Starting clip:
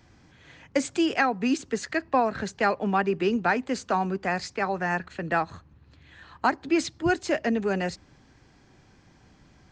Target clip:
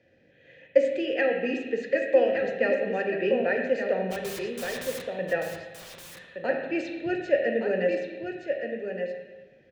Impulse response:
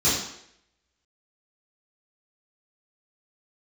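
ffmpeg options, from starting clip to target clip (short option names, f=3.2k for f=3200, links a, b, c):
-filter_complex "[0:a]asplit=3[a][b][c];[a]bandpass=f=530:t=q:w=8,volume=0dB[d];[b]bandpass=f=1.84k:t=q:w=8,volume=-6dB[e];[c]bandpass=f=2.48k:t=q:w=8,volume=-9dB[f];[d][e][f]amix=inputs=3:normalize=0,lowshelf=f=360:g=7.5,asplit=3[g][h][i];[g]afade=t=out:st=4.1:d=0.02[j];[h]aeval=exprs='(mod(126*val(0)+1,2)-1)/126':c=same,afade=t=in:st=4.1:d=0.02,afade=t=out:st=5.02:d=0.02[k];[i]afade=t=in:st=5.02:d=0.02[l];[j][k][l]amix=inputs=3:normalize=0,aecho=1:1:1170:0.473,asplit=2[m][n];[1:a]atrim=start_sample=2205,asetrate=24696,aresample=44100,lowpass=6.5k[o];[n][o]afir=irnorm=-1:irlink=0,volume=-23dB[p];[m][p]amix=inputs=2:normalize=0,volume=6.5dB"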